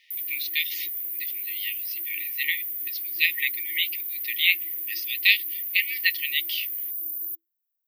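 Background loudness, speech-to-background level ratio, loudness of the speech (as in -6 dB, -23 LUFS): -28.5 LUFS, 3.0 dB, -25.5 LUFS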